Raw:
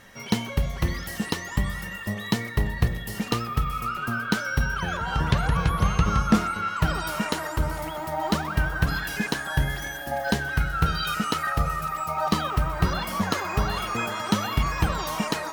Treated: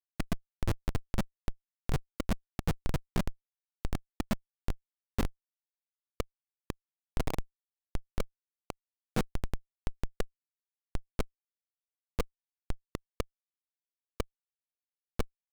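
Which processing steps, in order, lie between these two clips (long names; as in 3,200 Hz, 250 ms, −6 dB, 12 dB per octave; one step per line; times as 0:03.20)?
played backwards from end to start
high-pass filter sweep 110 Hz → 460 Hz, 0:02.42–0:06.38
comparator with hysteresis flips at −16 dBFS
level +1 dB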